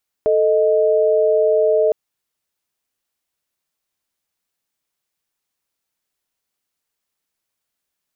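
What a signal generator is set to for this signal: chord A4/D#5 sine, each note -15 dBFS 1.66 s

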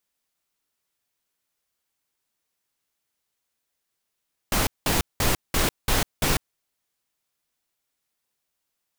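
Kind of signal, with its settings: noise bursts pink, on 0.15 s, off 0.19 s, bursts 6, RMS -21.5 dBFS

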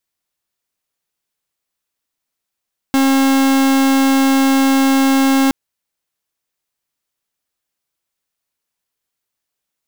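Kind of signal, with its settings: pulse 270 Hz, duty 44% -12.5 dBFS 2.57 s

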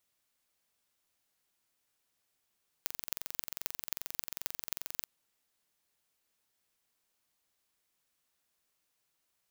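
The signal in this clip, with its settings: pulse train 22.5/s, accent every 6, -5 dBFS 2.21 s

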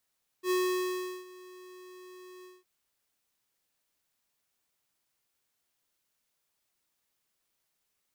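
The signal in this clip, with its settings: ADSR square 366 Hz, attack 76 ms, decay 0.737 s, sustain -22.5 dB, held 2.01 s, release 0.197 s -27 dBFS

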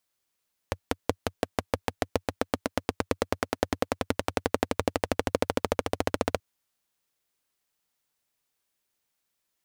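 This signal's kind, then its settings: single-cylinder engine model, changing speed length 5.68 s, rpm 600, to 1800, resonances 93/270/470 Hz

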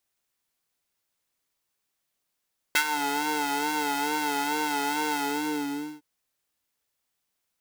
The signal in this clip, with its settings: synth patch with vibrato D4, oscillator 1 square, interval +7 st, detune 18 cents, oscillator 2 level -10 dB, sub -8.5 dB, noise -12.5 dB, filter highpass, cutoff 230 Hz, Q 1.6, filter envelope 3 oct, filter decay 0.23 s, filter sustain 45%, attack 6.2 ms, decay 0.08 s, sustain -11 dB, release 0.87 s, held 2.39 s, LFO 2.3 Hz, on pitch 60 cents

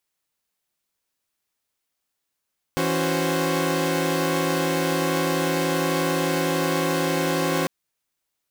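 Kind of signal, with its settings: chord E3/C#4/F#4/C5 saw, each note -24 dBFS 4.90 s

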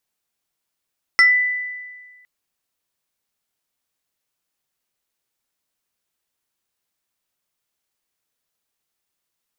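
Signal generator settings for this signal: FM tone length 1.06 s, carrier 1990 Hz, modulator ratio 1.68, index 0.79, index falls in 0.23 s exponential, decay 1.53 s, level -7.5 dB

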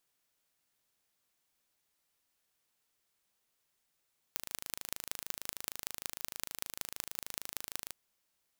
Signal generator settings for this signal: pulse train 26.5/s, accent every 5, -7.5 dBFS 3.56 s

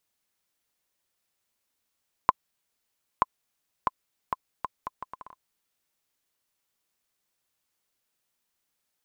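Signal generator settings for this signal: bouncing ball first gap 0.93 s, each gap 0.7, 1030 Hz, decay 28 ms -4.5 dBFS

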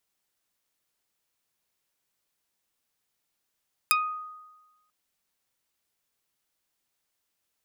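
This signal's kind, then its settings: plucked string D#6, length 0.99 s, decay 1.18 s, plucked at 0.31, dark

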